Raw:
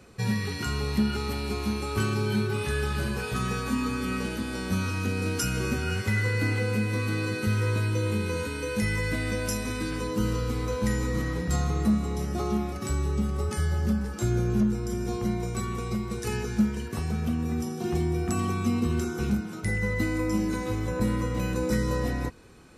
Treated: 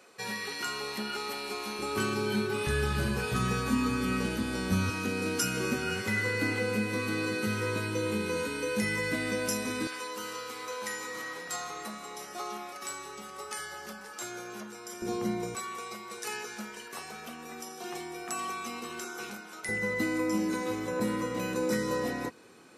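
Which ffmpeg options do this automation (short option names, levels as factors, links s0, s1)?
-af "asetnsamples=n=441:p=0,asendcmd='1.79 highpass f 220;2.67 highpass f 66;4.9 highpass f 200;9.87 highpass f 770;15.02 highpass f 230;15.55 highpass f 680;19.69 highpass f 250',highpass=490"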